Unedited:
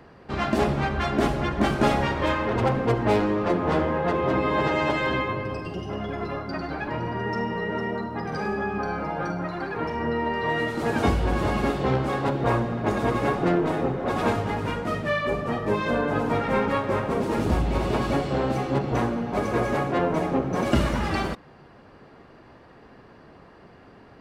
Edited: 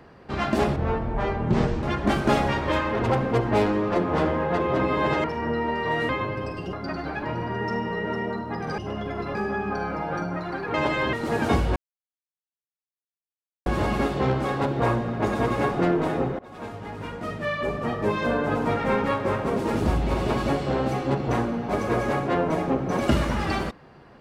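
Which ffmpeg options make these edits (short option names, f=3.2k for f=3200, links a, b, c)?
-filter_complex "[0:a]asplit=12[a][b][c][d][e][f][g][h][i][j][k][l];[a]atrim=end=0.764[m];[b]atrim=start=0.76:end=1.37,asetpts=PTS-STARTPTS,asetrate=25137,aresample=44100[n];[c]atrim=start=1.366:end=4.782[o];[d]atrim=start=9.818:end=10.672[p];[e]atrim=start=5.168:end=5.812[q];[f]atrim=start=6.378:end=8.432[r];[g]atrim=start=5.808:end=6.382[s];[h]atrim=start=8.428:end=9.822[t];[i]atrim=start=4.778:end=5.172[u];[j]atrim=start=10.668:end=11.3,asetpts=PTS-STARTPTS,afade=t=out:st=0.628:d=0.004:c=hsin,apad=pad_dur=1.9[v];[k]atrim=start=11.3:end=14.03,asetpts=PTS-STARTPTS,afade=t=in:d=0.004:c=hsin,afade=t=out:st=2.726:d=0.004:c=hsin:silence=0.0668344[w];[l]atrim=start=14.03,asetpts=PTS-STARTPTS,afade=t=in:d=1.53:silence=0.0668344[x];[m][n]acrossfade=d=0.004:c1=hsin:c2=hsin[y];[y][o]acrossfade=d=0.004:c1=hsin:c2=hsin[z];[z][p]acrossfade=d=0.004:c1=hsin:c2=hsin[aa];[aa][q]acrossfade=d=0.004:c1=hsin:c2=hsin[ab];[ab][r]acrossfade=d=0.004:c1=hsin:c2=hsin[ac];[ac][s]acrossfade=d=0.004:c1=hsin:c2=hsin[ad];[ad][t]acrossfade=d=0.004:c1=hsin:c2=hsin[ae];[ae][u]acrossfade=d=0.004:c1=hsin:c2=hsin[af];[v][w][x]concat=n=3:v=0:a=1[ag];[af][ag]acrossfade=d=0.004:c1=hsin:c2=hsin"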